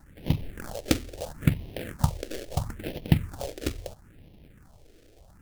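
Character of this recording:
aliases and images of a low sample rate 1,100 Hz, jitter 20%
phaser sweep stages 4, 0.75 Hz, lowest notch 150–1,400 Hz

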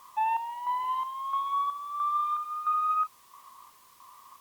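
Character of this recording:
chopped level 1.5 Hz, depth 60%, duty 55%
a quantiser's noise floor 10 bits, dither triangular
Opus

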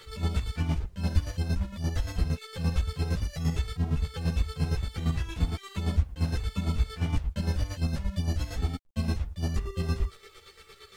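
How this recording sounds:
chopped level 8.7 Hz, depth 60%, duty 35%
a quantiser's noise floor 12 bits, dither none
a shimmering, thickened sound

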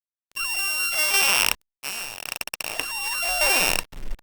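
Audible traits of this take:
a buzz of ramps at a fixed pitch in blocks of 16 samples
tremolo saw down 0.88 Hz, depth 50%
a quantiser's noise floor 8 bits, dither none
Opus

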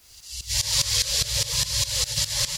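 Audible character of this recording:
tremolo saw up 4.9 Hz, depth 90%
a quantiser's noise floor 10 bits, dither triangular
MP3

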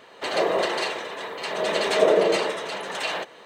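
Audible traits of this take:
tremolo triangle 0.66 Hz, depth 55%

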